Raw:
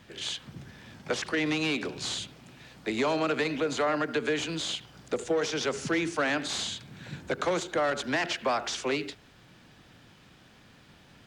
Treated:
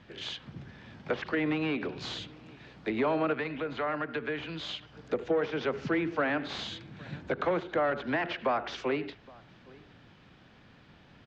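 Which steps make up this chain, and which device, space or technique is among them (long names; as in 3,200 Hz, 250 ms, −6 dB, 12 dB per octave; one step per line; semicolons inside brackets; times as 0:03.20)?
shout across a valley (high-frequency loss of the air 170 metres; slap from a distant wall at 140 metres, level −24 dB)
treble cut that deepens with the level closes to 2,400 Hz, closed at −27 dBFS
0:03.33–0:04.92: parametric band 380 Hz −6 dB 2.7 octaves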